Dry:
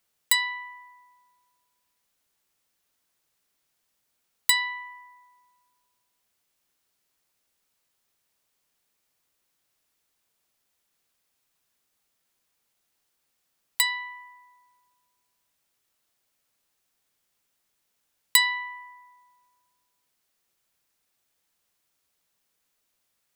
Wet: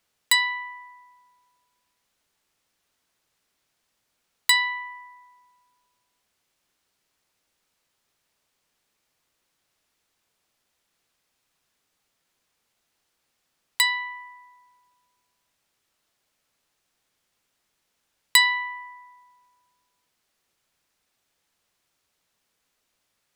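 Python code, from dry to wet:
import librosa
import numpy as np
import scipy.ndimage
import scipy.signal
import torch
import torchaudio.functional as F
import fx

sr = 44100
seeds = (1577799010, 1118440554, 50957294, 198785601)

y = fx.high_shelf(x, sr, hz=10000.0, db=-11.0)
y = F.gain(torch.from_numpy(y), 4.5).numpy()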